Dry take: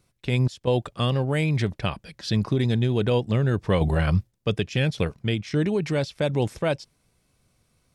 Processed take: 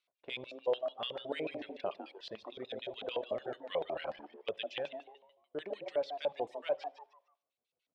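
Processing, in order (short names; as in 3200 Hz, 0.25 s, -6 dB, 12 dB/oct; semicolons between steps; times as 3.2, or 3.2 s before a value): 4.9–5.55 inverse Chebyshev band-stop 130–6800 Hz, stop band 40 dB; frequency-shifting echo 0.152 s, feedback 38%, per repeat +140 Hz, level -8 dB; LFO band-pass square 6.8 Hz 610–3300 Hz; tone controls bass -12 dB, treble -9 dB; de-hum 68.37 Hz, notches 25; reverb RT60 0.45 s, pre-delay 63 ms, DRR 16 dB; reverb removal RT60 1.4 s; 1.29–2.18 bell 290 Hz +8.5 dB 1.5 oct; 3.11–3.57 three-band squash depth 40%; gain -3 dB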